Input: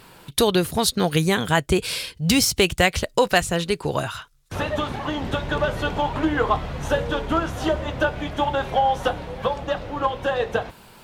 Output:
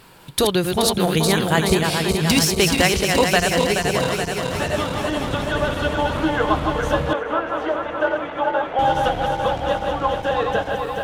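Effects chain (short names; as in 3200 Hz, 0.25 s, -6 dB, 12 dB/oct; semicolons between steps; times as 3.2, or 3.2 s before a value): regenerating reverse delay 0.213 s, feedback 81%, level -4.5 dB; 7.13–8.79 three-band isolator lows -20 dB, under 300 Hz, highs -19 dB, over 2700 Hz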